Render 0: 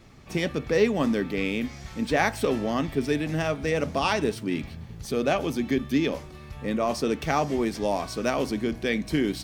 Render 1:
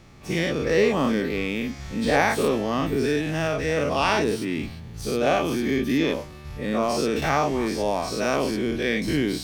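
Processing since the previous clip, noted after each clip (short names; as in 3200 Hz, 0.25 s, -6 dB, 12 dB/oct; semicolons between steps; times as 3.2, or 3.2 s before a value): spectral dilation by 0.12 s; gain -2.5 dB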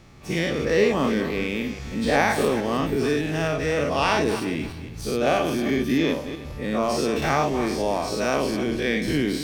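regenerating reverse delay 0.163 s, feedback 43%, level -11 dB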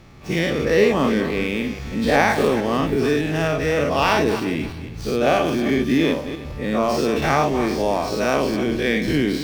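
median filter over 5 samples; gain +3.5 dB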